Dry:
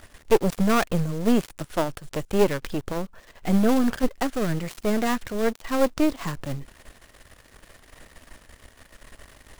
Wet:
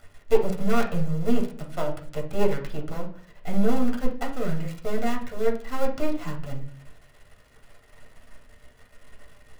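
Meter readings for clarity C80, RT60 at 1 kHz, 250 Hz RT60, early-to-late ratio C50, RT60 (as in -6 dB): 14.0 dB, 0.45 s, 0.70 s, 9.5 dB, 0.50 s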